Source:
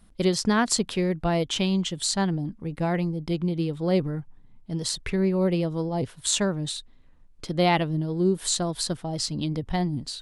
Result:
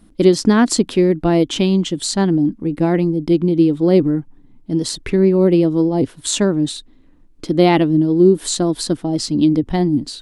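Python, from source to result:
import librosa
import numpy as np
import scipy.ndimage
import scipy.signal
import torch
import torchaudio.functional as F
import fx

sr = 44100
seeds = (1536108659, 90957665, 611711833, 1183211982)

y = fx.peak_eq(x, sr, hz=300.0, db=14.5, octaves=0.8)
y = y * 10.0 ** (4.0 / 20.0)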